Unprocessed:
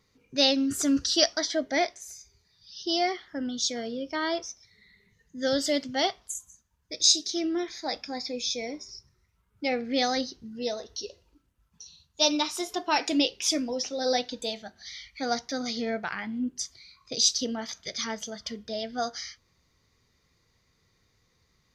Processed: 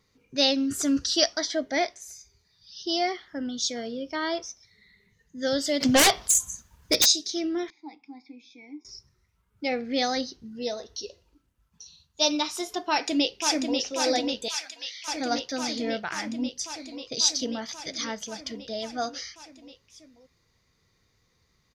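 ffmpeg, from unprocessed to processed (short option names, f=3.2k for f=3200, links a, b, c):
-filter_complex "[0:a]asplit=3[a][b][c];[a]afade=t=out:st=5.8:d=0.02[d];[b]aeval=exprs='0.2*sin(PI/2*4.47*val(0)/0.2)':c=same,afade=t=in:st=5.8:d=0.02,afade=t=out:st=7.04:d=0.02[e];[c]afade=t=in:st=7.04:d=0.02[f];[d][e][f]amix=inputs=3:normalize=0,asettb=1/sr,asplit=3[g][h][i];[g]atrim=end=7.704[j];[h]atrim=start=7.7:end=8.85,asetpts=PTS-STARTPTS,afade=t=in:d=0.004:c=qsin,afade=t=out:st=1.146:d=0.004:c=qsin,asplit=3[k][l][m];[k]bandpass=f=300:t=q:w=8,volume=0dB[n];[l]bandpass=f=870:t=q:w=8,volume=-6dB[o];[m]bandpass=f=2.24k:t=q:w=8,volume=-9dB[p];[n][o][p]amix=inputs=3:normalize=0[q];[i]atrim=start=8.846[r];[j][q]acrossfade=d=0.004:c1=hsin:c2=qsin[s];[s][r]acrossfade=d=0.004:c1=qsin:c2=hsin,asplit=2[t][u];[u]afade=t=in:st=12.86:d=0.01,afade=t=out:st=13.78:d=0.01,aecho=0:1:540|1080|1620|2160|2700|3240|3780|4320|4860|5400|5940|6480:0.595662|0.47653|0.381224|0.304979|0.243983|0.195187|0.156149|0.124919|0.0999355|0.0799484|0.0639587|0.051167[v];[t][v]amix=inputs=2:normalize=0,asettb=1/sr,asplit=3[w][x][y];[w]atrim=end=14.484[z];[x]atrim=start=14.48:end=15.08,asetpts=PTS-STARTPTS,afade=t=in:d=0.004:c=qsin,afade=t=out:st=0.596:d=0.004:c=qsin,highpass=1.5k[aa];[y]atrim=start=15.076[ab];[z][aa]acrossfade=d=0.004:c1=hsin:c2=qsin[ac];[ac][ab]acrossfade=d=0.004:c1=qsin:c2=hsin"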